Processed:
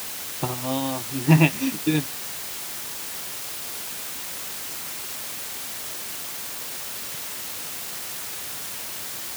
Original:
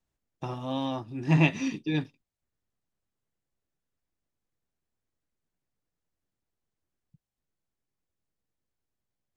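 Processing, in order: transient shaper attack +7 dB, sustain -4 dB; requantised 6-bit, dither triangular; HPF 68 Hz; gain +3 dB

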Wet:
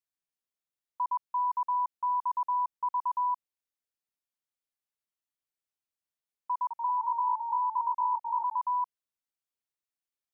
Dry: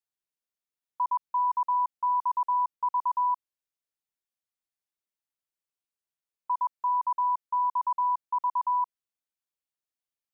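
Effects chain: 6.53–8.59 echoes that change speed 0.176 s, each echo -1 st, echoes 2, each echo -6 dB; gain -3 dB

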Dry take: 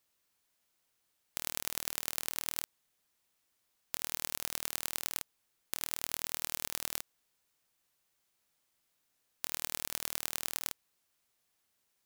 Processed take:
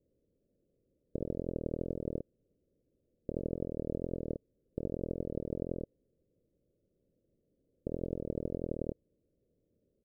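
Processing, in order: steep low-pass 560 Hz 72 dB/oct; tempo 1.2×; gain +17.5 dB

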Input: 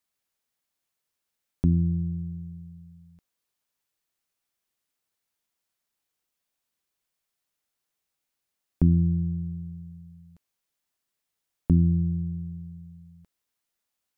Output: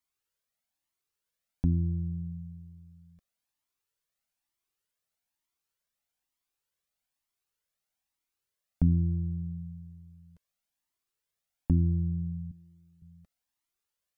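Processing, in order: 12.51–13.02 HPF 450 Hz 6 dB/oct; cascading flanger rising 1.1 Hz

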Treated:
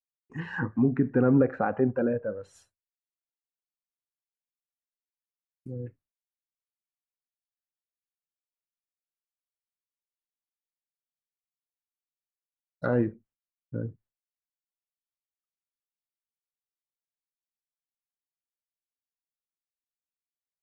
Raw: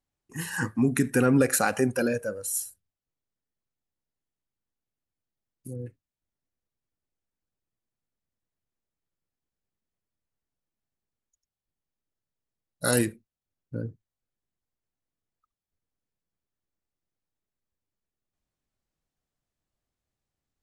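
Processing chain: LPF 2100 Hz 12 dB/oct; treble ducked by the level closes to 1100 Hz, closed at -26 dBFS; expander -55 dBFS

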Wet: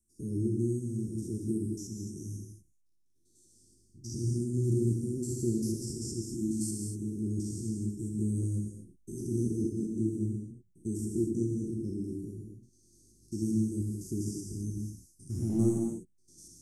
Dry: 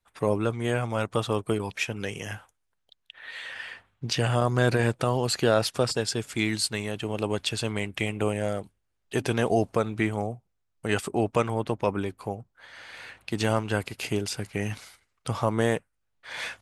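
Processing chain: stepped spectrum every 0.1 s; Chebyshev band-stop 360–5600 Hz, order 5; 8.41–9.21 doubler 18 ms -2.5 dB; 15.3–15.74 sample leveller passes 1; non-linear reverb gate 0.27 s flat, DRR 0 dB; gain -3.5 dB

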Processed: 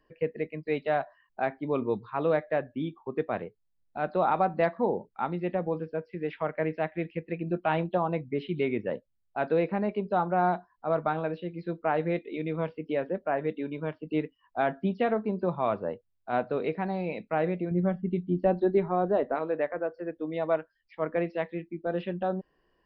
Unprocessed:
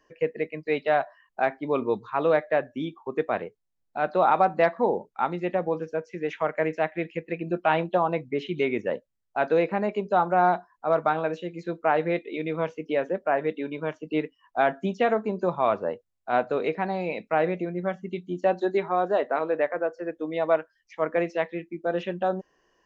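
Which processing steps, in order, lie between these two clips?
low shelf 240 Hz +11 dB; downsampling 11025 Hz; 17.71–19.35 tilt -2.5 dB/oct; gain -6 dB

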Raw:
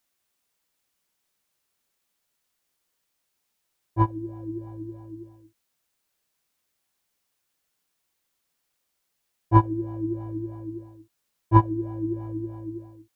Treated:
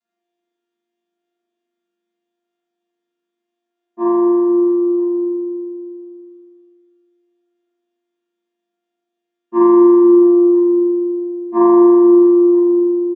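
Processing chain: chord vocoder bare fifth, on A#3; echo 0.97 s -22.5 dB; spring tank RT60 2.2 s, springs 40 ms, chirp 55 ms, DRR -9 dB

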